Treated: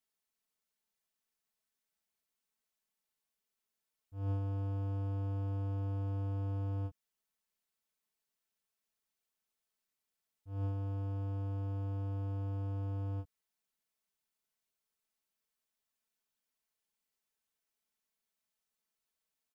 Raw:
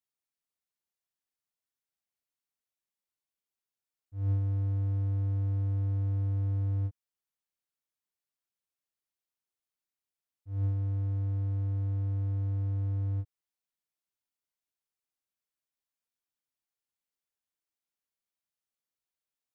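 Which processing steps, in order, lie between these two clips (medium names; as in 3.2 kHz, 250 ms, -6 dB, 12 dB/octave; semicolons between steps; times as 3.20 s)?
comb 4.6 ms, depth 72%; trim +1.5 dB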